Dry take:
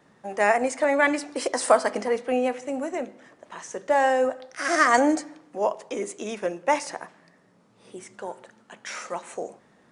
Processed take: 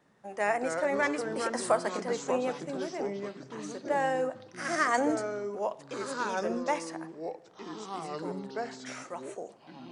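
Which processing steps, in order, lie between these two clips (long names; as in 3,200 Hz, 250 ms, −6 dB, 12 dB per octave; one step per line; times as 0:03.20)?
delay with pitch and tempo change per echo 147 ms, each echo −4 semitones, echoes 3, each echo −6 dB
level −8 dB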